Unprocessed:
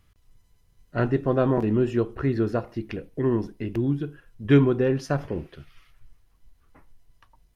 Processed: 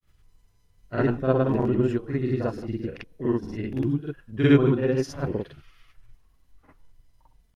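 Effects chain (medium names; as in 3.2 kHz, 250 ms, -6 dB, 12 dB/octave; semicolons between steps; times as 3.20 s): granulator, grains 20 per s, pitch spread up and down by 0 st; reverse echo 46 ms -7 dB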